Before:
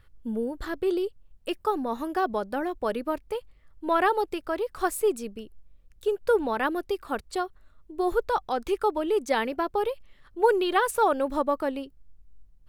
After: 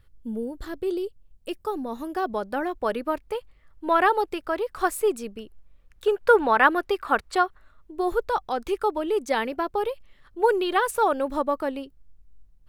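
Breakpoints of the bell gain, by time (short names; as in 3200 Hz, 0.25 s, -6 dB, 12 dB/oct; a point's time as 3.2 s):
bell 1400 Hz 2.5 oct
1.99 s -5.5 dB
2.59 s +4 dB
5.3 s +4 dB
6.09 s +11.5 dB
7.45 s +11.5 dB
8.1 s +1 dB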